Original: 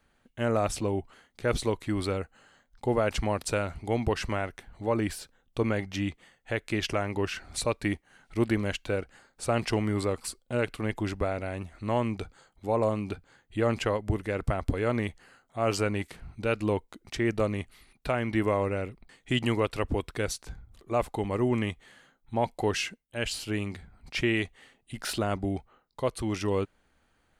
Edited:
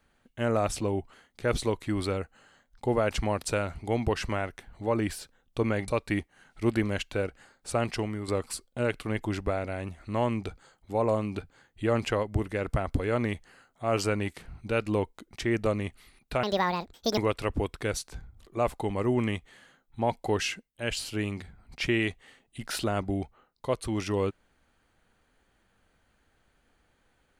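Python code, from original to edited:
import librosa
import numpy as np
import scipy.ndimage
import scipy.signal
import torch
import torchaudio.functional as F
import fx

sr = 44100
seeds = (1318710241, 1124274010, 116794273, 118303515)

y = fx.edit(x, sr, fx.cut(start_s=5.88, length_s=1.74),
    fx.fade_out_to(start_s=9.45, length_s=0.57, floor_db=-9.0),
    fx.speed_span(start_s=18.17, length_s=1.35, speed=1.81), tone=tone)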